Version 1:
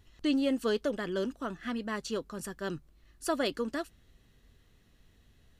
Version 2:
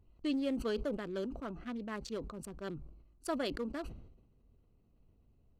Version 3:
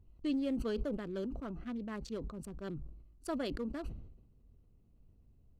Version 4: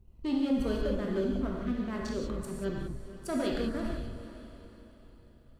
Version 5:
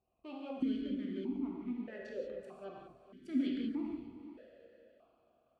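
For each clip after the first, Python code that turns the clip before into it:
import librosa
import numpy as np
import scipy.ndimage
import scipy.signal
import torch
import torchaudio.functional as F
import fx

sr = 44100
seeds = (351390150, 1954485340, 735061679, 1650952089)

y1 = fx.wiener(x, sr, points=25)
y1 = fx.sustainer(y1, sr, db_per_s=63.0)
y1 = F.gain(torch.from_numpy(y1), -5.5).numpy()
y2 = fx.low_shelf(y1, sr, hz=280.0, db=8.5)
y2 = F.gain(torch.from_numpy(y2), -4.0).numpy()
y3 = fx.echo_diffused(y2, sr, ms=450, feedback_pct=48, wet_db=-14)
y3 = fx.leveller(y3, sr, passes=1)
y3 = fx.rev_gated(y3, sr, seeds[0], gate_ms=210, shape='flat', drr_db=-1.5)
y4 = fx.vowel_held(y3, sr, hz=1.6)
y4 = F.gain(torch.from_numpy(y4), 4.0).numpy()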